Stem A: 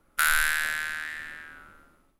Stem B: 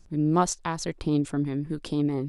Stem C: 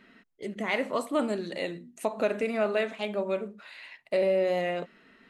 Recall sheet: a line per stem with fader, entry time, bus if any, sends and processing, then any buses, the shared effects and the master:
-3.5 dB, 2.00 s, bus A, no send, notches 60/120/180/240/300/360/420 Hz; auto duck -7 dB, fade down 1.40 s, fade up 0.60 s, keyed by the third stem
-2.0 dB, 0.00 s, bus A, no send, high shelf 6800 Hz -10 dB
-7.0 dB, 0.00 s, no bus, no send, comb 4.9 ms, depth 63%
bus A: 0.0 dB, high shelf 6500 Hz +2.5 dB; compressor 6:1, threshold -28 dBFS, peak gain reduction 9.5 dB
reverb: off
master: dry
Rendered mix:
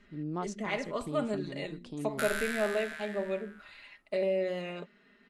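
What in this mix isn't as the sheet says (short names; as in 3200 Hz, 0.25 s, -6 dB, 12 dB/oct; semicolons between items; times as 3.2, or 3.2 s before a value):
stem B -2.0 dB -> -13.0 dB; master: extra LPF 9600 Hz 12 dB/oct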